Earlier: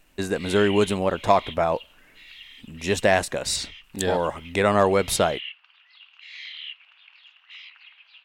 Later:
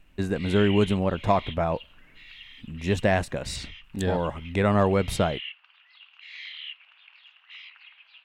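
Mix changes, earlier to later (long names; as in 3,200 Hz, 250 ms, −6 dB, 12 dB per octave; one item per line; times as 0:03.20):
speech −4.5 dB
master: add bass and treble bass +10 dB, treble −7 dB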